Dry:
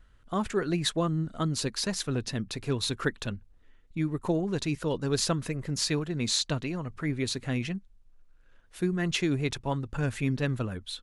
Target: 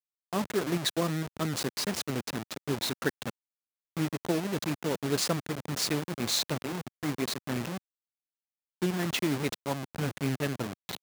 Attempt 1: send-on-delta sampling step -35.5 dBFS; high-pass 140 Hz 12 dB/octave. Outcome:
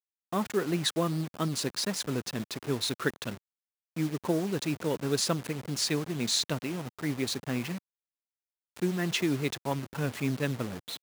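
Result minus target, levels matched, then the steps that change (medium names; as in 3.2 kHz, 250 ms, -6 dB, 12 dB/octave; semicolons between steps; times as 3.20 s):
send-on-delta sampling: distortion -9 dB
change: send-on-delta sampling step -27.5 dBFS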